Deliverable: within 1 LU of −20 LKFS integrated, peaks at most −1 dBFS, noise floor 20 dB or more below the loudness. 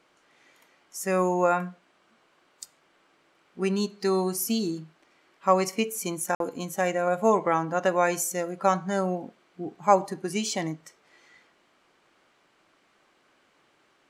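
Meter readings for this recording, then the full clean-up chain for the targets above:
number of dropouts 1; longest dropout 52 ms; integrated loudness −26.5 LKFS; sample peak −5.5 dBFS; target loudness −20.0 LKFS
→ repair the gap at 0:06.35, 52 ms
level +6.5 dB
brickwall limiter −1 dBFS

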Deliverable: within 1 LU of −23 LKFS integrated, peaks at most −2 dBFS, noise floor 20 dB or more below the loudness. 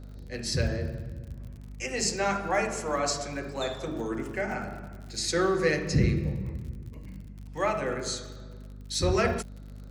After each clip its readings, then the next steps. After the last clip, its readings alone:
crackle rate 59 per second; mains hum 50 Hz; hum harmonics up to 250 Hz; level of the hum −40 dBFS; integrated loudness −29.5 LKFS; sample peak −10.5 dBFS; target loudness −23.0 LKFS
→ click removal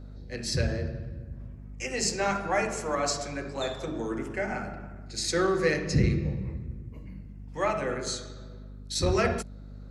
crackle rate 0.10 per second; mains hum 50 Hz; hum harmonics up to 250 Hz; level of the hum −40 dBFS
→ mains-hum notches 50/100/150/200/250 Hz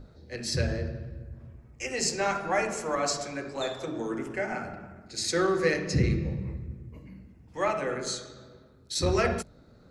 mains hum none found; integrated loudness −29.5 LKFS; sample peak −11.0 dBFS; target loudness −23.0 LKFS
→ level +6.5 dB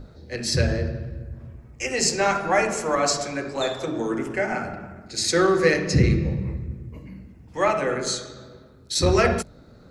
integrated loudness −23.5 LKFS; sample peak −4.5 dBFS; background noise floor −49 dBFS

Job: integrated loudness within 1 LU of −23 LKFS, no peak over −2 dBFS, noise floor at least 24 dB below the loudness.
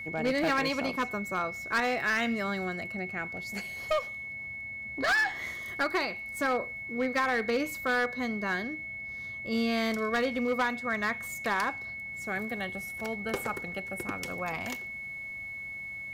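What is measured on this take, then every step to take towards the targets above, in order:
share of clipped samples 1.4%; peaks flattened at −22.5 dBFS; interfering tone 2,200 Hz; level of the tone −37 dBFS; integrated loudness −31.0 LKFS; sample peak −22.5 dBFS; target loudness −23.0 LKFS
→ clipped peaks rebuilt −22.5 dBFS
notch filter 2,200 Hz, Q 30
level +8 dB

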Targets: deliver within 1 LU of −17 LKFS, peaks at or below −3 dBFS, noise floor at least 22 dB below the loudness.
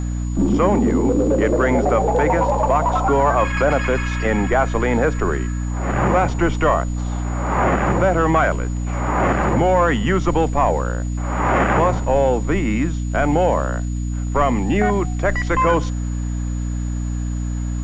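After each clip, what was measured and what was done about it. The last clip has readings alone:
mains hum 60 Hz; hum harmonics up to 300 Hz; level of the hum −20 dBFS; interfering tone 6,900 Hz; level of the tone −42 dBFS; integrated loudness −19.0 LKFS; sample peak −4.5 dBFS; target loudness −17.0 LKFS
→ mains-hum notches 60/120/180/240/300 Hz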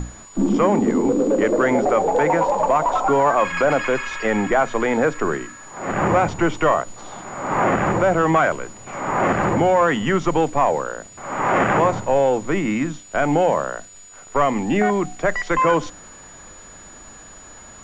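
mains hum none found; interfering tone 6,900 Hz; level of the tone −42 dBFS
→ notch filter 6,900 Hz, Q 30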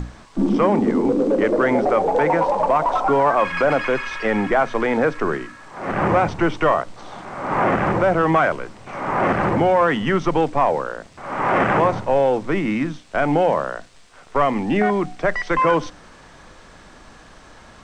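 interfering tone none found; integrated loudness −19.5 LKFS; sample peak −6.0 dBFS; target loudness −17.0 LKFS
→ level +2.5 dB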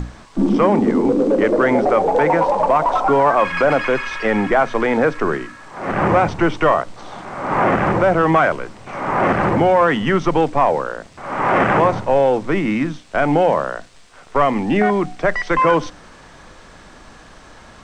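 integrated loudness −17.0 LKFS; sample peak −3.5 dBFS; background noise floor −43 dBFS

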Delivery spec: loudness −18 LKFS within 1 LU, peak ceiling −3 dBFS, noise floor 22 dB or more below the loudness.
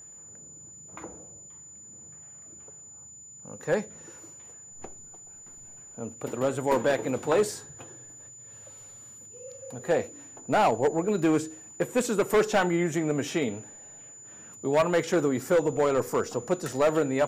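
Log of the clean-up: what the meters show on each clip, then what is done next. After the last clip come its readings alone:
share of clipped samples 0.9%; peaks flattened at −17.0 dBFS; interfering tone 7,000 Hz; level of the tone −45 dBFS; integrated loudness −26.5 LKFS; sample peak −17.0 dBFS; target loudness −18.0 LKFS
→ clipped peaks rebuilt −17 dBFS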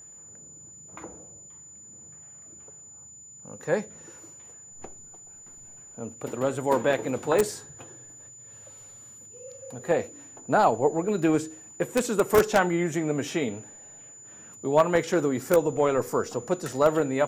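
share of clipped samples 0.0%; interfering tone 7,000 Hz; level of the tone −45 dBFS
→ notch filter 7,000 Hz, Q 30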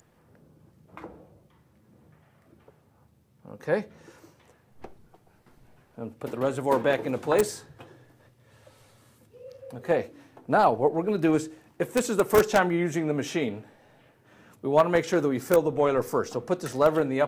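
interfering tone none found; integrated loudness −25.5 LKFS; sample peak −8.0 dBFS; target loudness −18.0 LKFS
→ level +7.5 dB
brickwall limiter −3 dBFS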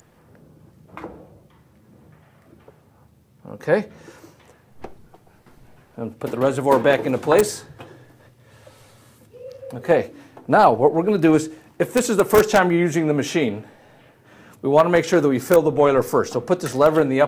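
integrated loudness −18.5 LKFS; sample peak −3.0 dBFS; background noise floor −55 dBFS

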